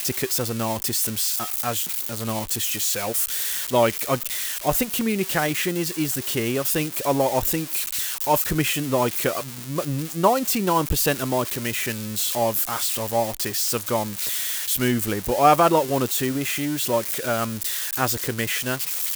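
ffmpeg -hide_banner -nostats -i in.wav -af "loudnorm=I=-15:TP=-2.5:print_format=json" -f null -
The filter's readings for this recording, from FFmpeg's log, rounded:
"input_i" : "-22.7",
"input_tp" : "-4.3",
"input_lra" : "2.5",
"input_thresh" : "-32.7",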